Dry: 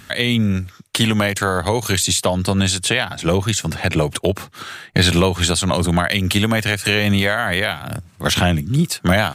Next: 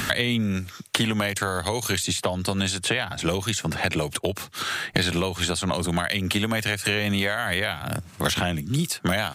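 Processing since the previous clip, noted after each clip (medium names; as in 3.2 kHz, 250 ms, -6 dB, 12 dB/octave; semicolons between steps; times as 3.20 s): bass shelf 180 Hz -4.5 dB; three bands compressed up and down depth 100%; trim -7 dB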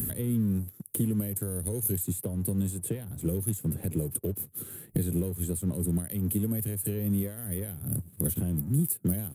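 FFT filter 150 Hz 0 dB, 460 Hz -6 dB, 690 Hz -24 dB, 1.2 kHz -29 dB, 5.5 kHz -29 dB, 11 kHz +9 dB; waveshaping leveller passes 1; trim -4.5 dB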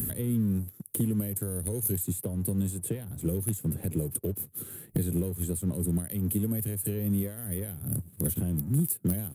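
hard clipper -18.5 dBFS, distortion -31 dB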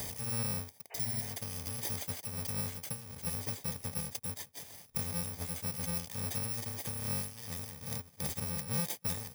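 bit-reversed sample order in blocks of 128 samples; spectral replace 0.94–1.31 s, 400–3000 Hz after; trim -8 dB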